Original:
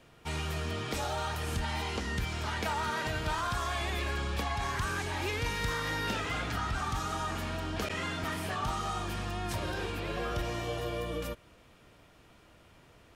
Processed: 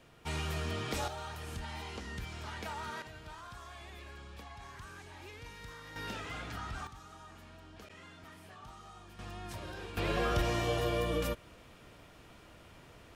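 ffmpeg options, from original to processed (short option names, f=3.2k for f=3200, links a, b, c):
-af "asetnsamples=n=441:p=0,asendcmd='1.08 volume volume -8.5dB;3.02 volume volume -16dB;5.96 volume volume -8dB;6.87 volume volume -18dB;9.19 volume volume -9dB;9.97 volume volume 3dB',volume=-1.5dB"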